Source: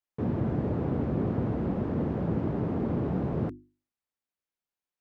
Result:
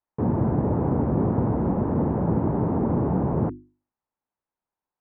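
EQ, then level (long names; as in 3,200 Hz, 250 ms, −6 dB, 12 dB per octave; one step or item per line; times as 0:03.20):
low-pass filter 1,500 Hz 12 dB per octave
high-frequency loss of the air 210 metres
parametric band 910 Hz +7.5 dB 0.48 octaves
+6.0 dB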